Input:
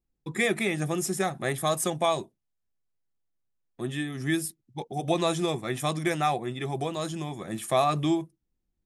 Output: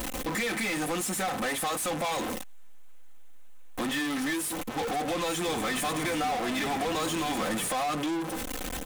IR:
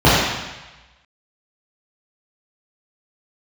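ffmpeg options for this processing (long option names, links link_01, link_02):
-filter_complex "[0:a]aeval=exprs='val(0)+0.5*0.0126*sgn(val(0))':channel_layout=same,equalizer=frequency=4900:width=2.8:gain=-11.5,aecho=1:1:3.9:0.93,acompressor=threshold=-34dB:ratio=6,asoftclip=type=tanh:threshold=-30dB,asplit=2[link_01][link_02];[link_02]highpass=frequency=720:poles=1,volume=29dB,asoftclip=type=tanh:threshold=-30.5dB[link_03];[link_01][link_03]amix=inputs=2:normalize=0,lowpass=frequency=7700:poles=1,volume=-6dB,asplit=3[link_04][link_05][link_06];[link_04]afade=type=out:start_time=5.43:duration=0.02[link_07];[link_05]asplit=9[link_08][link_09][link_10][link_11][link_12][link_13][link_14][link_15][link_16];[link_09]adelay=93,afreqshift=-40,volume=-11.5dB[link_17];[link_10]adelay=186,afreqshift=-80,volume=-15.4dB[link_18];[link_11]adelay=279,afreqshift=-120,volume=-19.3dB[link_19];[link_12]adelay=372,afreqshift=-160,volume=-23.1dB[link_20];[link_13]adelay=465,afreqshift=-200,volume=-27dB[link_21];[link_14]adelay=558,afreqshift=-240,volume=-30.9dB[link_22];[link_15]adelay=651,afreqshift=-280,volume=-34.8dB[link_23];[link_16]adelay=744,afreqshift=-320,volume=-38.6dB[link_24];[link_08][link_17][link_18][link_19][link_20][link_21][link_22][link_23][link_24]amix=inputs=9:normalize=0,afade=type=in:start_time=5.43:duration=0.02,afade=type=out:start_time=7.68:duration=0.02[link_25];[link_06]afade=type=in:start_time=7.68:duration=0.02[link_26];[link_07][link_25][link_26]amix=inputs=3:normalize=0,volume=5.5dB"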